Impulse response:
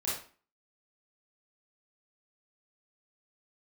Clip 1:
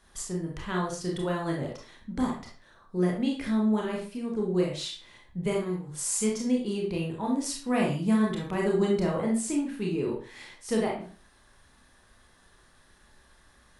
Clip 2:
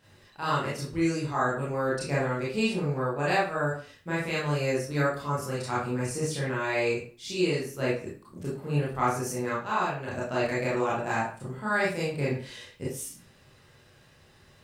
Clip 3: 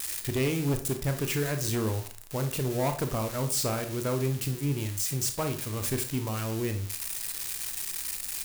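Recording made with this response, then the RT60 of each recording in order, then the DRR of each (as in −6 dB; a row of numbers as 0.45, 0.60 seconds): 2; 0.40, 0.40, 0.40 seconds; −2.0, −8.0, 6.5 decibels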